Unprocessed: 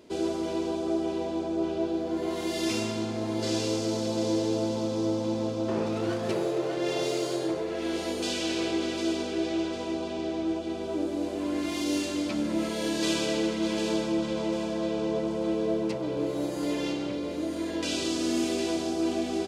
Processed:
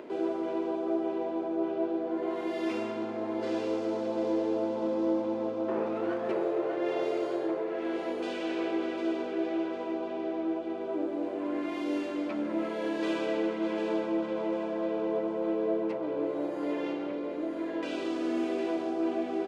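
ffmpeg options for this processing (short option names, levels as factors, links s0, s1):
-filter_complex "[0:a]asettb=1/sr,asplit=3[s0][s1][s2];[s0]atrim=end=4.794[s3];[s1]atrim=start=4.79:end=5.22,asetpts=PTS-STARTPTS,afade=t=in:d=0.004:c=qsin,afade=t=out:st=0.426:d=0.004:c=qsin,asplit=2[s4][s5];[s5]adelay=31,volume=0.631[s6];[s4][s6]amix=inputs=2:normalize=0,atrim=end_sample=18963[s7];[s2]atrim=start=5.216[s8];[s3][s7]acrossfade=d=0.004:c1=hsin:c2=qsin[s9];[s9][s8]acrossfade=d=0.004:c1=qsin:c2=hsin,acompressor=mode=upward:threshold=0.0224:ratio=2.5,acrossover=split=250 2400:gain=0.112 1 0.0794[s10][s11][s12];[s10][s11][s12]amix=inputs=3:normalize=0"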